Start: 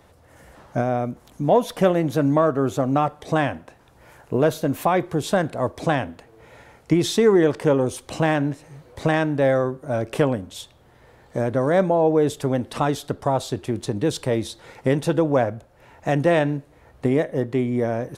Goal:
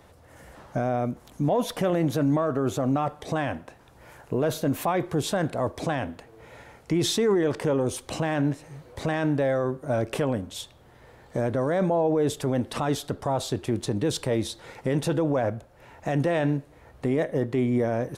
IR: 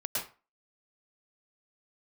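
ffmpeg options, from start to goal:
-af "alimiter=limit=-15.5dB:level=0:latency=1:release=16"

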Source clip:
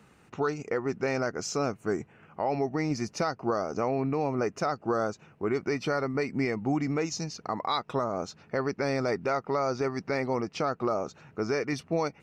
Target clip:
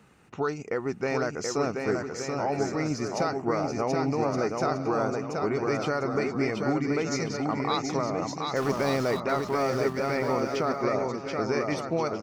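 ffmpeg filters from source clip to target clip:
-filter_complex "[0:a]asettb=1/sr,asplit=3[a][b][c];[a]atrim=end=8.564[d];[b]atrim=start=8.56:end=9.2,asetpts=PTS-STARTPTS,afade=t=in:d=0.004:c=qsin,afade=t=out:st=0.636:d=0.004:c=qsin,aeval=exprs='val(0)+0.5*0.0211*sgn(val(0))':c=same[e];[c]atrim=start=9.196[f];[d][e]acrossfade=d=0.004:c1=hsin:c2=qsin[g];[g][f]acrossfade=d=0.004:c1=qsin:c2=hsin,aecho=1:1:730|1168|1431|1588|1683:0.631|0.398|0.251|0.158|0.1"

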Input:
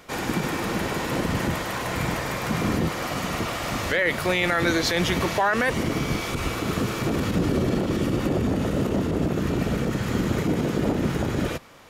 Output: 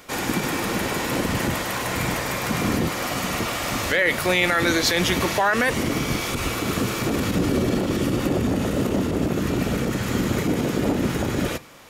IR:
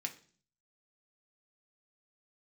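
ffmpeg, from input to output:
-filter_complex "[0:a]highshelf=f=6.4k:g=6,asplit=2[a][b];[1:a]atrim=start_sample=2205[c];[b][c]afir=irnorm=-1:irlink=0,volume=-8.5dB[d];[a][d]amix=inputs=2:normalize=0"

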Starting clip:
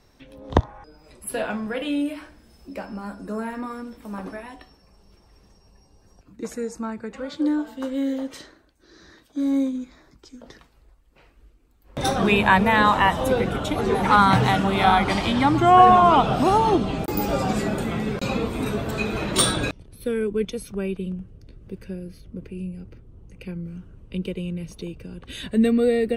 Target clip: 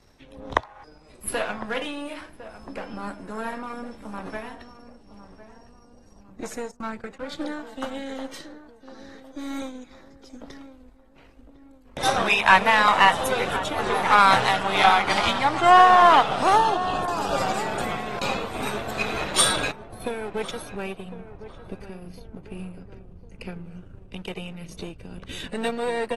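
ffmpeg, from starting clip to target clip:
-filter_complex "[0:a]aeval=exprs='if(lt(val(0),0),0.447*val(0),val(0))':c=same,asettb=1/sr,asplit=3[a][b][c];[a]atrim=end=6.714[d];[b]atrim=start=6.71:end=7.37,asetpts=PTS-STARTPTS,afade=t=in:d=0.004:c=qsin,afade=t=out:st=0.656:d=0.004:c=qsin,agate=range=-35dB:threshold=-39dB:ratio=16:detection=peak[e];[c]atrim=start=7.366[f];[d][e]acrossfade=d=0.004:c1=hsin:c2=qsin[g];[g][f]acrossfade=d=0.004:c1=qsin:c2=hsin,asettb=1/sr,asplit=3[h][i][j];[h]atrim=end=13.134[k];[i]atrim=start=13.13:end=13.57,asetpts=PTS-STARTPTS,afade=t=in:d=0.004:c=qsin,afade=t=out:st=0.436:d=0.004:c=qsin,highshelf=f=4.3k:g=5.5[l];[j]atrim=start=13.566[m];[k][l]acrossfade=d=0.004:c1=hsin:c2=qsin[n];[n][m]acrossfade=d=0.004:c1=qsin:c2=hsin,acrossover=split=560[o][p];[o]acompressor=threshold=-37dB:ratio=8[q];[q][p]amix=inputs=2:normalize=0,tremolo=f=2.3:d=0.32,asplit=2[r][s];[s]aeval=exprs='sgn(val(0))*max(abs(val(0))-0.00841,0)':c=same,volume=-9dB[t];[r][t]amix=inputs=2:normalize=0,asettb=1/sr,asplit=3[u][v][w];[u]atrim=end=16.554[x];[v]atrim=start=16.55:end=17.36,asetpts=PTS-STARTPTS,afade=t=in:d=0.004:c=qsin,afade=t=out:st=0.806:d=0.004:c=qsin,asuperstop=centerf=2100:order=8:qfactor=3.1[y];[w]atrim=start=17.356[z];[x][y]acrossfade=d=0.004:c1=hsin:c2=qsin[aa];[aa][z]acrossfade=d=0.004:c1=qsin:c2=hsin,asplit=2[ab][ac];[ac]adelay=1055,lowpass=f=1.1k:p=1,volume=-12.5dB,asplit=2[ad][ae];[ae]adelay=1055,lowpass=f=1.1k:p=1,volume=0.49,asplit=2[af][ag];[ag]adelay=1055,lowpass=f=1.1k:p=1,volume=0.49,asplit=2[ah][ai];[ai]adelay=1055,lowpass=f=1.1k:p=1,volume=0.49,asplit=2[aj][ak];[ak]adelay=1055,lowpass=f=1.1k:p=1,volume=0.49[al];[ab][ad][af][ah][aj][al]amix=inputs=6:normalize=0,volume=3dB" -ar 44100 -c:a aac -b:a 32k

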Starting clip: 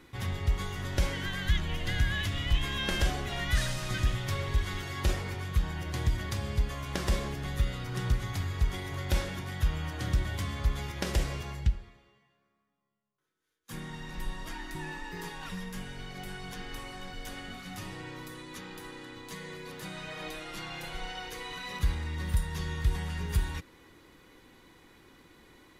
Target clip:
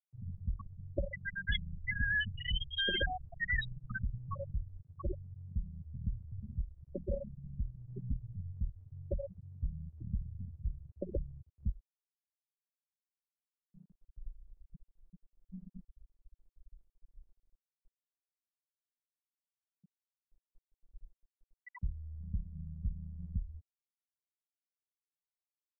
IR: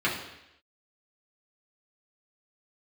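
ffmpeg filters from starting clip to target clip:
-af "aeval=exprs='if(lt(val(0),0),0.447*val(0),val(0))':c=same,afftfilt=real='re*gte(hypot(re,im),0.0794)':imag='im*gte(hypot(re,im),0.0794)':win_size=1024:overlap=0.75,bass=f=250:g=-15,treble=f=4k:g=-1,volume=8dB"

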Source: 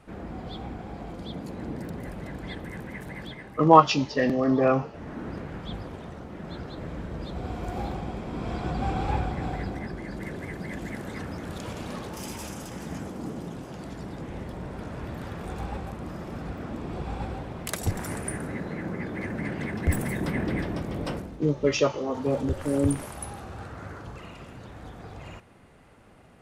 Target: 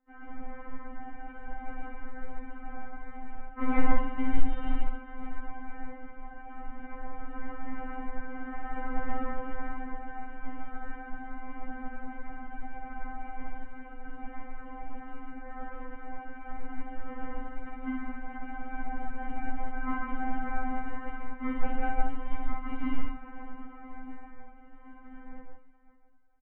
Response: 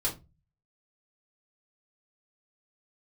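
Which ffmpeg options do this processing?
-filter_complex "[0:a]agate=range=-14dB:threshold=-42dB:ratio=16:detection=peak,aemphasis=mode=production:type=75fm,bandreject=f=80.88:t=h:w=4,bandreject=f=161.76:t=h:w=4,bandreject=f=242.64:t=h:w=4,bandreject=f=323.52:t=h:w=4,bandreject=f=404.4:t=h:w=4,bandreject=f=485.28:t=h:w=4,bandreject=f=566.16:t=h:w=4,bandreject=f=647.04:t=h:w=4,bandreject=f=727.92:t=h:w=4,bandreject=f=808.8:t=h:w=4,bandreject=f=889.68:t=h:w=4,bandreject=f=970.56:t=h:w=4,bandreject=f=1.05144k:t=h:w=4,bandreject=f=1.13232k:t=h:w=4,bandreject=f=1.2132k:t=h:w=4,bandreject=f=1.29408k:t=h:w=4,bandreject=f=1.37496k:t=h:w=4,bandreject=f=1.45584k:t=h:w=4,bandreject=f=1.53672k:t=h:w=4,bandreject=f=1.6176k:t=h:w=4,bandreject=f=1.69848k:t=h:w=4,bandreject=f=1.77936k:t=h:w=4,bandreject=f=1.86024k:t=h:w=4,bandreject=f=1.94112k:t=h:w=4,bandreject=f=2.022k:t=h:w=4,bandreject=f=2.10288k:t=h:w=4,bandreject=f=2.18376k:t=h:w=4,bandreject=f=2.26464k:t=h:w=4,bandreject=f=2.34552k:t=h:w=4,bandreject=f=2.4264k:t=h:w=4,bandreject=f=2.50728k:t=h:w=4,bandreject=f=2.58816k:t=h:w=4,bandreject=f=2.66904k:t=h:w=4,bandreject=f=2.74992k:t=h:w=4,aresample=8000,acrusher=samples=20:mix=1:aa=0.000001,aresample=44100,volume=14dB,asoftclip=hard,volume=-14dB,highpass=f=190:t=q:w=0.5412,highpass=f=190:t=q:w=1.307,lowpass=f=2.2k:t=q:w=0.5176,lowpass=f=2.2k:t=q:w=0.7071,lowpass=f=2.2k:t=q:w=1.932,afreqshift=-240,aecho=1:1:58|568:0.668|0.178,asplit=2[a][b];[1:a]atrim=start_sample=2205,atrim=end_sample=3528,adelay=140[c];[b][c]afir=irnorm=-1:irlink=0,volume=-9.5dB[d];[a][d]amix=inputs=2:normalize=0,afftfilt=real='re*3.46*eq(mod(b,12),0)':imag='im*3.46*eq(mod(b,12),0)':win_size=2048:overlap=0.75,volume=2dB"

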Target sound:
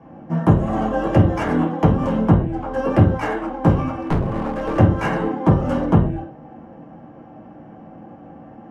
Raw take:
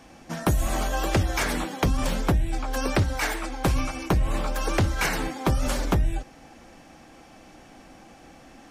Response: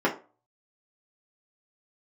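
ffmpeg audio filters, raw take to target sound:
-filter_complex "[0:a]acrossover=split=380[a][b];[b]adynamicsmooth=sensitivity=6:basefreq=2.5k[c];[a][c]amix=inputs=2:normalize=0[d];[1:a]atrim=start_sample=2205,afade=t=out:st=0.14:d=0.01,atrim=end_sample=6615,asetrate=24255,aresample=44100[e];[d][e]afir=irnorm=-1:irlink=0,asettb=1/sr,asplit=3[f][g][h];[f]atrim=end=4.014[i];[g]atrim=start=4.01:end=4.78,asetpts=PTS-STARTPTS,afade=t=in:d=0.004:c=qsin,afade=t=out:st=0.766:d=0.004:c=qsin,aeval=exprs='clip(val(0),-1,0.299)':c=same[j];[h]atrim=start=4.776[k];[i][j]acrossfade=d=0.004:c1=hsin:c2=qsin[l];[l][k]acrossfade=d=0.004:c1=qsin:c2=hsin,volume=-12dB"

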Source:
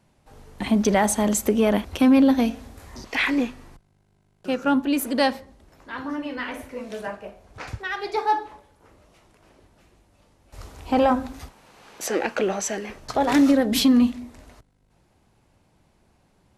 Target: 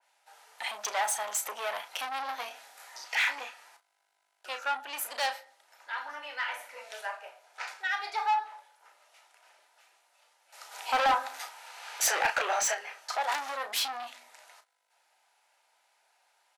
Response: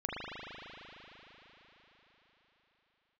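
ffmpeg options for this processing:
-filter_complex "[0:a]asuperstop=centerf=1100:order=12:qfactor=7.3,asplit=2[a][b];[b]adelay=34,volume=-9dB[c];[a][c]amix=inputs=2:normalize=0,asoftclip=type=tanh:threshold=-20dB,asplit=3[d][e][f];[d]afade=t=out:st=10.71:d=0.02[g];[e]acontrast=72,afade=t=in:st=10.71:d=0.02,afade=t=out:st=12.73:d=0.02[h];[f]afade=t=in:st=12.73:d=0.02[i];[g][h][i]amix=inputs=3:normalize=0,highpass=f=780:w=0.5412,highpass=f=780:w=1.3066,asoftclip=type=hard:threshold=-19.5dB,adynamicequalizer=threshold=0.00891:dfrequency=2300:dqfactor=0.7:tfrequency=2300:tqfactor=0.7:attack=5:release=100:ratio=0.375:range=3:mode=cutabove:tftype=highshelf"

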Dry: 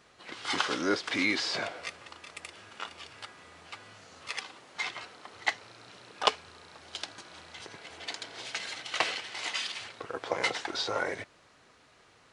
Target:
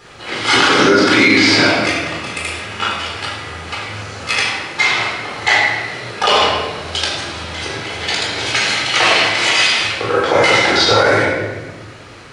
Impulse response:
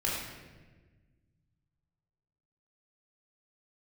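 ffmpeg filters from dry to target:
-filter_complex "[1:a]atrim=start_sample=2205[a];[0:a][a]afir=irnorm=-1:irlink=0,alimiter=level_in=16dB:limit=-1dB:release=50:level=0:latency=1,volume=-1dB"

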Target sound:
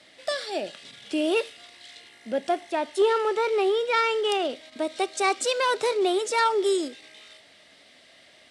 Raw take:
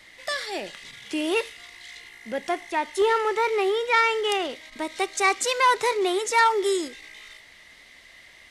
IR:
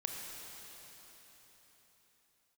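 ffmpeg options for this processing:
-af "highpass=130,equalizer=f=260:t=q:w=4:g=4,equalizer=f=620:t=q:w=4:g=7,equalizer=f=1k:t=q:w=4:g=-7,equalizer=f=2k:t=q:w=4:g=-10,equalizer=f=6.5k:t=q:w=4:g=-6,lowpass=f=9.8k:w=0.5412,lowpass=f=9.8k:w=1.3066"

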